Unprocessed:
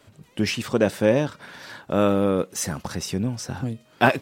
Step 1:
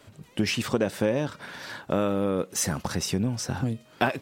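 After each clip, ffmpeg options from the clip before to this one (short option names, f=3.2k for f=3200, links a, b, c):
-af "acompressor=threshold=-22dB:ratio=6,volume=1.5dB"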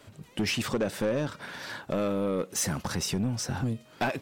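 -af "asoftclip=type=tanh:threshold=-21dB"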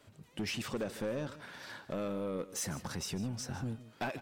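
-af "aecho=1:1:153:0.168,volume=-8.5dB"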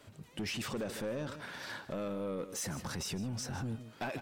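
-af "alimiter=level_in=11.5dB:limit=-24dB:level=0:latency=1:release=15,volume=-11.5dB,volume=4dB"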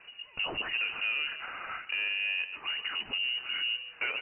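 -af "lowpass=f=2.6k:t=q:w=0.5098,lowpass=f=2.6k:t=q:w=0.6013,lowpass=f=2.6k:t=q:w=0.9,lowpass=f=2.6k:t=q:w=2.563,afreqshift=-3000,volume=5.5dB"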